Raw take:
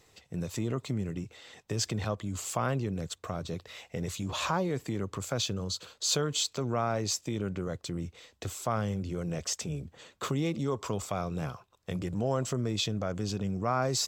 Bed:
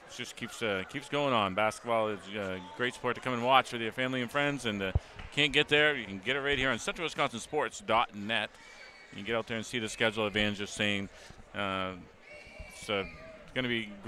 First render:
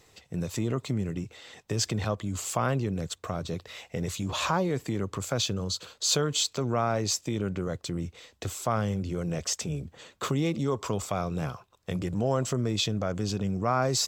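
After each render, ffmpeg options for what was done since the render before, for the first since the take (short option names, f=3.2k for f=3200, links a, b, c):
-af "volume=3dB"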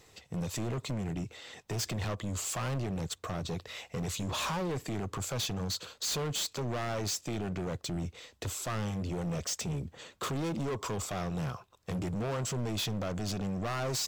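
-af "volume=31dB,asoftclip=hard,volume=-31dB"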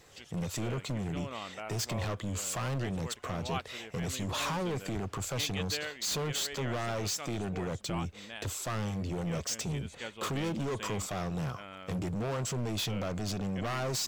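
-filter_complex "[1:a]volume=-13.5dB[a];[0:a][a]amix=inputs=2:normalize=0"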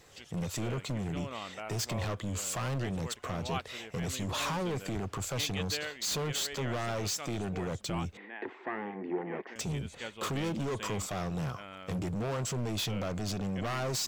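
-filter_complex "[0:a]asettb=1/sr,asplit=3[a][b][c];[a]atrim=end=8.174[d];[b]atrim=start=8.17:end=9.56,asetpts=PTS-STARTPTS,afade=t=in:d=0.004:c=qsin,afade=t=out:st=1.386:d=0.004:c=qsin,highpass=f=240:w=0.5412,highpass=f=240:w=1.3066,equalizer=f=260:t=q:w=4:g=3,equalizer=f=370:t=q:w=4:g=9,equalizer=f=580:t=q:w=4:g=-8,equalizer=f=830:t=q:w=4:g=7,equalizer=f=1.3k:t=q:w=4:g=-6,equalizer=f=1.9k:t=q:w=4:g=8,lowpass=f=2.1k:w=0.5412,lowpass=f=2.1k:w=1.3066[e];[c]atrim=start=9.556[f];[d][e]acrossfade=d=0.004:c1=hsin:c2=qsin[g];[g][f]acrossfade=d=0.004:c1=qsin:c2=hsin"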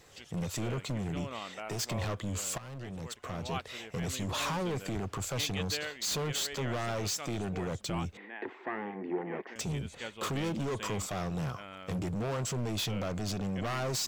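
-filter_complex "[0:a]asettb=1/sr,asplit=3[a][b][c];[a]atrim=end=1.394[d];[b]atrim=start=1.39:end=1.9,asetpts=PTS-STARTPTS,afade=t=in:d=0.004:c=qsin,afade=t=out:st=0.506:d=0.004:c=qsin,equalizer=f=73:w=1.5:g=-12[e];[c]atrim=start=1.896[f];[d][e]acrossfade=d=0.004:c1=hsin:c2=qsin[g];[g][f]acrossfade=d=0.004:c1=qsin:c2=hsin,asplit=2[h][i];[h]atrim=end=2.58,asetpts=PTS-STARTPTS,afade=t=out:st=2.576:d=0.004:c=hsin:silence=0.188365[j];[i]atrim=start=2.58,asetpts=PTS-STARTPTS,afade=t=in:d=1.6:c=qsin:silence=0.188365[k];[j][k]concat=n=2:v=0:a=1"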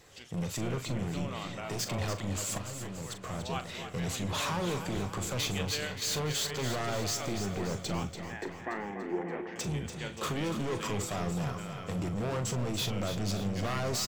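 -filter_complex "[0:a]asplit=2[a][b];[b]adelay=40,volume=-11dB[c];[a][c]amix=inputs=2:normalize=0,aecho=1:1:288|576|864|1152|1440|1728|2016:0.355|0.199|0.111|0.0623|0.0349|0.0195|0.0109"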